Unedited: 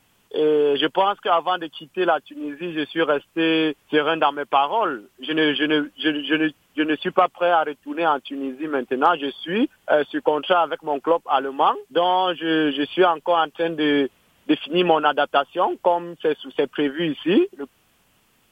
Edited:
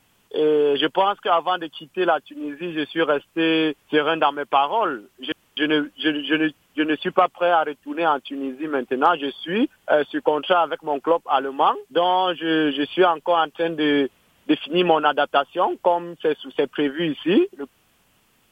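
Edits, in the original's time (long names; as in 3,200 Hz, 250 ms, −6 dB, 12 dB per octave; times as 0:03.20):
0:05.32–0:05.57: fill with room tone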